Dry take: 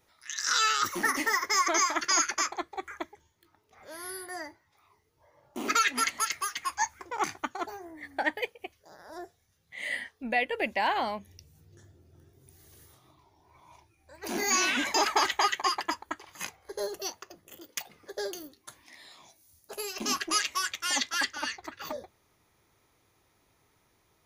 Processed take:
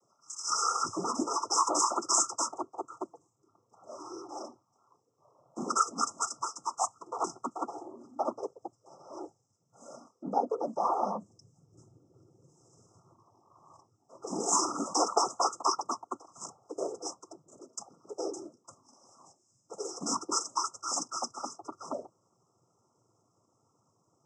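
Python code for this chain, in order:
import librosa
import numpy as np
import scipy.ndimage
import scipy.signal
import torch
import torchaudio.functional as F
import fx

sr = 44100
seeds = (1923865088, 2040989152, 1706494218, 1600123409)

y = fx.noise_vocoder(x, sr, seeds[0], bands=16)
y = fx.brickwall_bandstop(y, sr, low_hz=1400.0, high_hz=5000.0)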